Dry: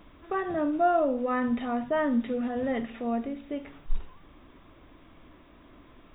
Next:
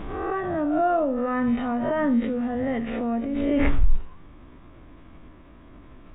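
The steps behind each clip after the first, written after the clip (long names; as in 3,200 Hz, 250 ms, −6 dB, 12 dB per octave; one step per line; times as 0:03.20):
peak hold with a rise ahead of every peak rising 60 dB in 0.55 s
bass and treble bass +6 dB, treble −13 dB
background raised ahead of every attack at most 26 dB per second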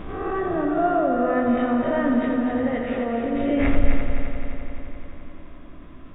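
notch filter 890 Hz, Q 13
echo machine with several playback heads 86 ms, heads first and third, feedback 74%, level −7 dB
on a send at −10.5 dB: convolution reverb RT60 0.45 s, pre-delay 9 ms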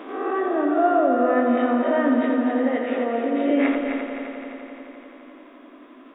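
elliptic high-pass filter 250 Hz, stop band 40 dB
level +2.5 dB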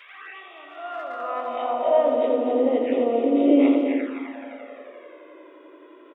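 flanger swept by the level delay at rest 2.4 ms, full sweep at −20 dBFS
far-end echo of a speakerphone 150 ms, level −17 dB
high-pass filter sweep 2,200 Hz → 330 Hz, 0:00.56–0:02.81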